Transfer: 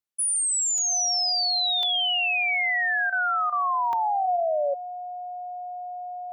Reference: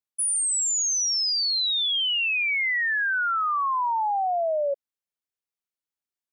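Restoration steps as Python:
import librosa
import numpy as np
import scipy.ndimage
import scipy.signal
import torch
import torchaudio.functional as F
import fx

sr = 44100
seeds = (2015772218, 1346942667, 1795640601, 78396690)

y = fx.notch(x, sr, hz=720.0, q=30.0)
y = fx.fix_interpolate(y, sr, at_s=(0.78, 1.83, 3.93), length_ms=2.3)
y = fx.fix_interpolate(y, sr, at_s=(3.1, 3.5), length_ms=23.0)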